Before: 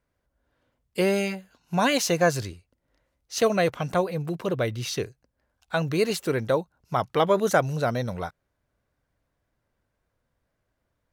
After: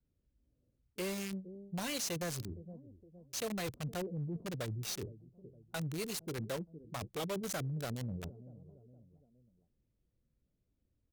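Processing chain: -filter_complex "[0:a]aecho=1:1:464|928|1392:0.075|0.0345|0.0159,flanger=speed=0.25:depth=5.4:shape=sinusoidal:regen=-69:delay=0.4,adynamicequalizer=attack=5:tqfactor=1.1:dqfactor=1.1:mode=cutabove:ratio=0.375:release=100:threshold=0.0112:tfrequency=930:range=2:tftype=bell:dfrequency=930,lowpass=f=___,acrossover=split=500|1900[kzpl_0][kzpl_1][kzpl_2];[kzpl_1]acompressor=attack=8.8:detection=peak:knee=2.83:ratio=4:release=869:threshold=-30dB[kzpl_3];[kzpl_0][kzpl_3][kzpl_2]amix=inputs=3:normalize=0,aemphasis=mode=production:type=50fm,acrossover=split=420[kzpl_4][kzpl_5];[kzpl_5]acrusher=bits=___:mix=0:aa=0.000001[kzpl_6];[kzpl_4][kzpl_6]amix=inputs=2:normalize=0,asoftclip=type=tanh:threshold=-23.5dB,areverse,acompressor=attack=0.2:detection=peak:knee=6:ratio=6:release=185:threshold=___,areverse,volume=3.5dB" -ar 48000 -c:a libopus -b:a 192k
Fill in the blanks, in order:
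9300, 4, -38dB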